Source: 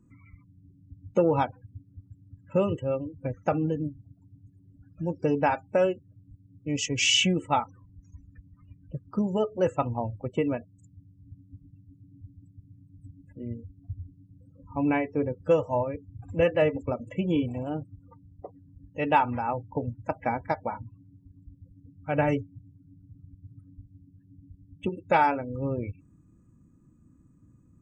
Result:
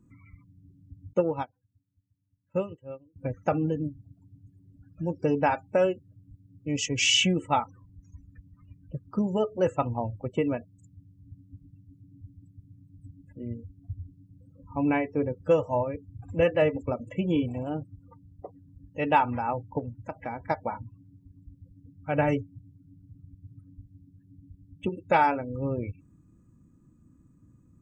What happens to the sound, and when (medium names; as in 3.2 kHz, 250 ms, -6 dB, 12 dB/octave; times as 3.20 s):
1.13–3.16 s: upward expansion 2.5:1, over -34 dBFS
19.79–20.43 s: compression 2:1, threshold -35 dBFS